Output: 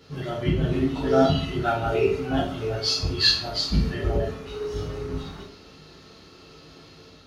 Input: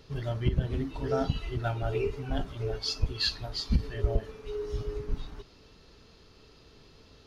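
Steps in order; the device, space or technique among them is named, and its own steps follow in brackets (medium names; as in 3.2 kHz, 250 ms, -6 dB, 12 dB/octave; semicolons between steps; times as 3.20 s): far laptop microphone (reverberation RT60 0.50 s, pre-delay 8 ms, DRR -5.5 dB; high-pass 100 Hz 12 dB/octave; level rider gain up to 3 dB); 0.88–1.45 s: peaking EQ 3.4 kHz +5.5 dB 0.33 oct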